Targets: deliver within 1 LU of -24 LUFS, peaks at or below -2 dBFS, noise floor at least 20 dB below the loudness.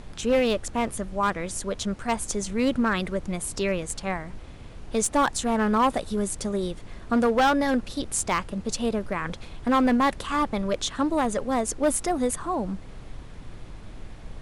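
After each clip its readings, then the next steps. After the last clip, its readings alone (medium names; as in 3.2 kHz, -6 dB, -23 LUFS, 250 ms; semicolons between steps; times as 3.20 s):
clipped samples 1.0%; clipping level -16.0 dBFS; noise floor -42 dBFS; noise floor target -46 dBFS; loudness -26.0 LUFS; peak level -16.0 dBFS; loudness target -24.0 LUFS
-> clip repair -16 dBFS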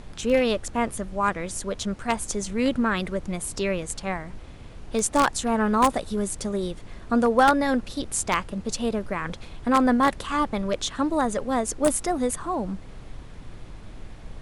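clipped samples 0.0%; noise floor -42 dBFS; noise floor target -45 dBFS
-> noise print and reduce 6 dB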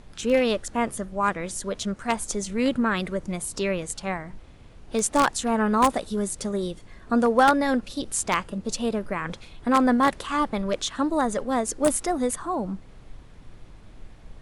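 noise floor -48 dBFS; loudness -25.0 LUFS; peak level -7.0 dBFS; loudness target -24.0 LUFS
-> trim +1 dB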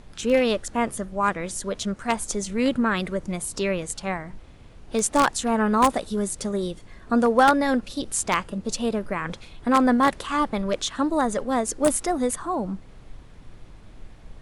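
loudness -24.0 LUFS; peak level -6.0 dBFS; noise floor -47 dBFS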